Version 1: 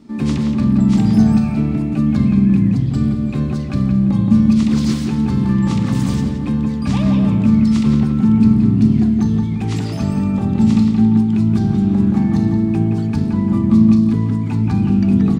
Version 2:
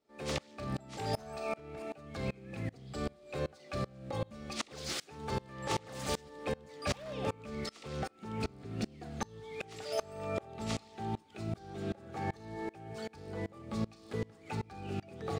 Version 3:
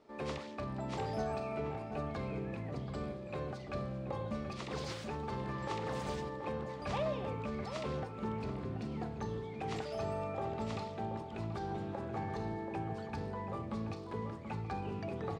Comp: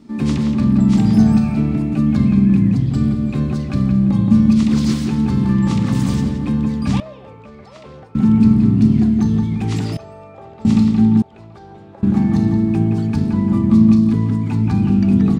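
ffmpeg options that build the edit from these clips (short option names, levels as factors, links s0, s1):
-filter_complex "[2:a]asplit=3[s0][s1][s2];[0:a]asplit=4[s3][s4][s5][s6];[s3]atrim=end=7.002[s7];[s0]atrim=start=6.998:end=8.152[s8];[s4]atrim=start=8.148:end=9.972[s9];[s1]atrim=start=9.968:end=10.652[s10];[s5]atrim=start=10.648:end=11.222[s11];[s2]atrim=start=11.218:end=12.032[s12];[s6]atrim=start=12.028[s13];[s7][s8]acrossfade=d=0.004:c1=hsin:c2=hsin[s14];[s14][s9]acrossfade=d=0.004:c1=hsin:c2=hsin[s15];[s15][s10]acrossfade=d=0.004:c1=hsin:c2=hsin[s16];[s16][s11]acrossfade=d=0.004:c1=hsin:c2=hsin[s17];[s17][s12]acrossfade=d=0.004:c1=hsin:c2=hsin[s18];[s18][s13]acrossfade=d=0.004:c1=hsin:c2=hsin"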